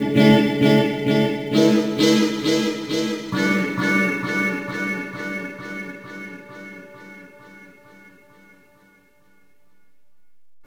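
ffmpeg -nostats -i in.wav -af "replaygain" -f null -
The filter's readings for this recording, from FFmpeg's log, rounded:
track_gain = -0.7 dB
track_peak = 0.513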